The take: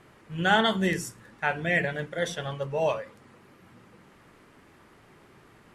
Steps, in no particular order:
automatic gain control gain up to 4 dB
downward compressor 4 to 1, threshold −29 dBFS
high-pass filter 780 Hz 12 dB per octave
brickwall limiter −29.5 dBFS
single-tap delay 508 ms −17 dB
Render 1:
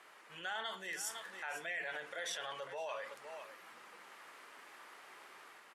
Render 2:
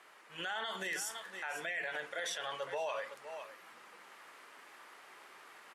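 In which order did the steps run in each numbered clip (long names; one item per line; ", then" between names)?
downward compressor, then automatic gain control, then single-tap delay, then brickwall limiter, then high-pass filter
high-pass filter, then downward compressor, then single-tap delay, then automatic gain control, then brickwall limiter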